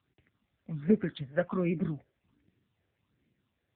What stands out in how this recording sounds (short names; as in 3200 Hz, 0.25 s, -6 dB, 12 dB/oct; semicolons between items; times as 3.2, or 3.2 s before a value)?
phasing stages 6, 1.3 Hz, lowest notch 260–1100 Hz; AMR-NB